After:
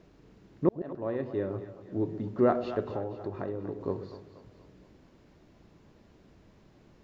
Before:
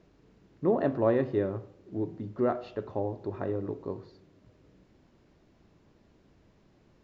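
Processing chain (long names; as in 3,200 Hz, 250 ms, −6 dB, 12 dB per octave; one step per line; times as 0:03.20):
0:00.69–0:02.29: fade in
0:02.82–0:03.81: downward compressor 2.5 to 1, threshold −38 dBFS, peak gain reduction 8.5 dB
echo with a time of its own for lows and highs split 510 Hz, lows 129 ms, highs 239 ms, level −12 dB
level +3.5 dB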